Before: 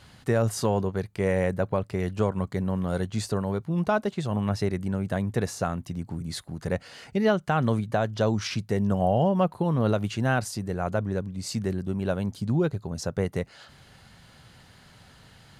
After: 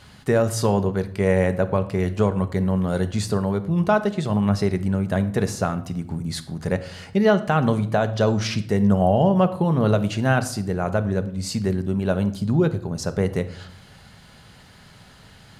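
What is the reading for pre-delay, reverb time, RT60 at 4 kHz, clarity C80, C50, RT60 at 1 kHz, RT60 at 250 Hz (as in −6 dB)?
5 ms, 0.65 s, 0.45 s, 18.0 dB, 14.5 dB, 0.60 s, 0.90 s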